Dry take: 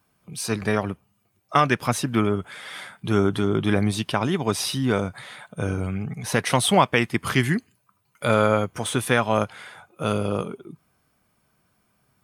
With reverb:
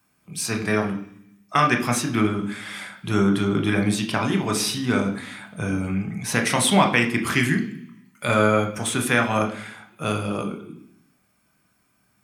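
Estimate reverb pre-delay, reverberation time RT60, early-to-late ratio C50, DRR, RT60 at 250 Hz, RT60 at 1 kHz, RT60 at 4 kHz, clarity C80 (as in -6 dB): 23 ms, 0.65 s, 10.5 dB, 4.0 dB, 0.95 s, 0.70 s, 0.90 s, 14.0 dB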